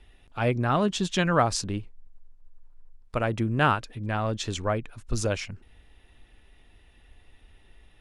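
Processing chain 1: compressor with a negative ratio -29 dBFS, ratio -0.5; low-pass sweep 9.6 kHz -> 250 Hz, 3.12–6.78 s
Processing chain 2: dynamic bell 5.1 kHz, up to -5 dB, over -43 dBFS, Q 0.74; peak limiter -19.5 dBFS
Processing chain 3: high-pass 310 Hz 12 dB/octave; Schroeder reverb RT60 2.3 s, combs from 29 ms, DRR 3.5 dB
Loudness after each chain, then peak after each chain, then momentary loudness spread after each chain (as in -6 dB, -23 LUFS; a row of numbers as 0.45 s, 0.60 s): -30.5 LUFS, -31.0 LUFS, -27.5 LUFS; -6.0 dBFS, -19.5 dBFS, -7.0 dBFS; 13 LU, 8 LU, 18 LU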